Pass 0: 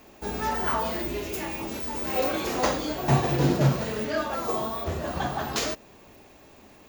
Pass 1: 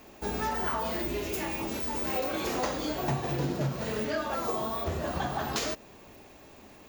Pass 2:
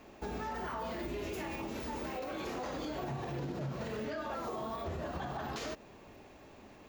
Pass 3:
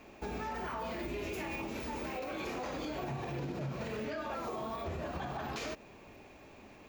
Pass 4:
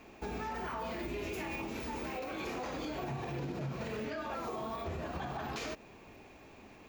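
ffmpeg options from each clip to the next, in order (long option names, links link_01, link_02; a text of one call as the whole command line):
ffmpeg -i in.wav -af "acompressor=threshold=-27dB:ratio=6" out.wav
ffmpeg -i in.wav -af "lowpass=frequency=3500:poles=1,alimiter=level_in=4.5dB:limit=-24dB:level=0:latency=1:release=74,volume=-4.5dB,volume=-2dB" out.wav
ffmpeg -i in.wav -af "equalizer=frequency=2400:width=6.3:gain=7" out.wav
ffmpeg -i in.wav -af "bandreject=frequency=580:width=16" out.wav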